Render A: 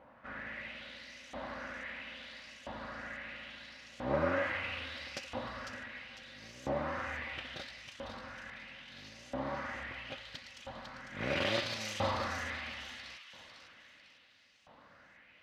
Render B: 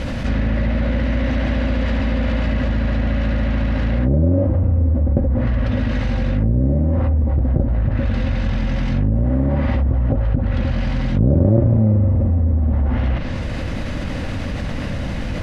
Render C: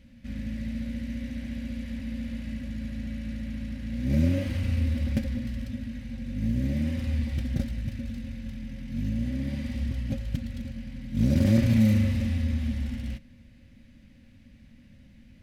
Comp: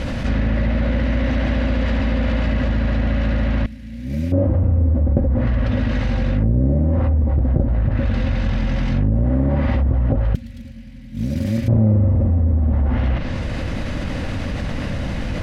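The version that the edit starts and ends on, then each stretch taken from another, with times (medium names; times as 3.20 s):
B
3.66–4.32 s: from C
10.35–11.68 s: from C
not used: A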